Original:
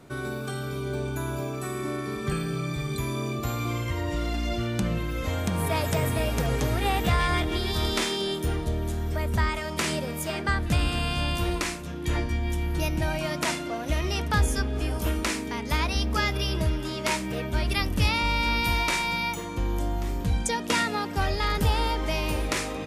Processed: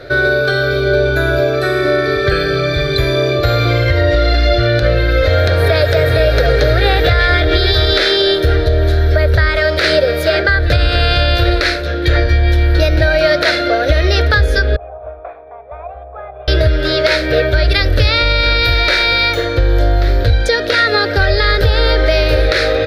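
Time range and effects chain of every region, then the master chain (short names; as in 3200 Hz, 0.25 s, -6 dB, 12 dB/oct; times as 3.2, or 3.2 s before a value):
14.76–16.48 CVSD 32 kbps + vocal tract filter a + bell 280 Hz -11.5 dB 0.52 oct
whole clip: EQ curve 110 Hz 0 dB, 200 Hz -23 dB, 310 Hz -6 dB, 570 Hz +8 dB, 1000 Hz -17 dB, 1500 Hz +7 dB, 2900 Hz -7 dB, 4100 Hz +7 dB, 7500 Hz -23 dB, 14000 Hz -13 dB; compressor, threshold -26 dBFS; maximiser +20 dB; gain -1 dB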